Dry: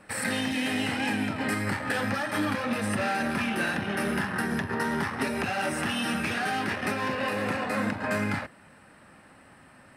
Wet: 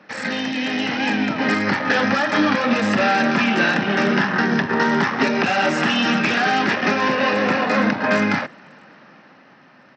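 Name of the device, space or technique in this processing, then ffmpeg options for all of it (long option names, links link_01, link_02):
Bluetooth headset: -af "highpass=frequency=150:width=0.5412,highpass=frequency=150:width=1.3066,dynaudnorm=framelen=110:gausssize=21:maxgain=6dB,aresample=16000,aresample=44100,volume=4.5dB" -ar 32000 -c:a sbc -b:a 64k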